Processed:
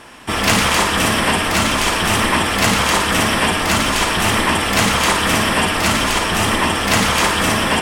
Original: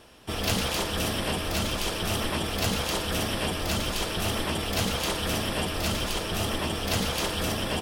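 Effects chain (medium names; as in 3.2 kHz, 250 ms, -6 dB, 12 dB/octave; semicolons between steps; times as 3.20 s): graphic EQ 125/250/1000/2000/8000 Hz +3/+7/+10/+11/+9 dB; flutter echo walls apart 9.5 m, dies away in 0.41 s; trim +4.5 dB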